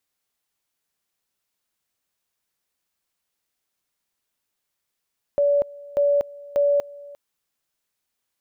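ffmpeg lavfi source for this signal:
-f lavfi -i "aevalsrc='pow(10,(-15.5-22*gte(mod(t,0.59),0.24))/20)*sin(2*PI*573*t)':d=1.77:s=44100"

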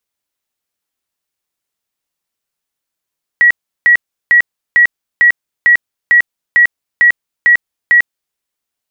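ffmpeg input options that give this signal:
-f lavfi -i "aevalsrc='0.631*sin(2*PI*1920*mod(t,0.45))*lt(mod(t,0.45),184/1920)':d=4.95:s=44100"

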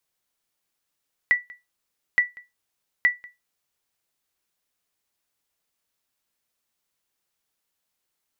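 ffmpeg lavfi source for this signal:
-f lavfi -i "aevalsrc='0.316*(sin(2*PI*1960*mod(t,0.87))*exp(-6.91*mod(t,0.87)/0.2)+0.0631*sin(2*PI*1960*max(mod(t,0.87)-0.19,0))*exp(-6.91*max(mod(t,0.87)-0.19,0)/0.2))':d=2.61:s=44100"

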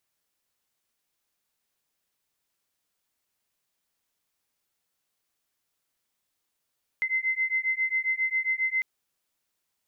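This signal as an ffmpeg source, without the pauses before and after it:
-f lavfi -i "aevalsrc='0.0422*(sin(2*PI*2060*t)+sin(2*PI*2067.4*t))':d=1.8:s=44100"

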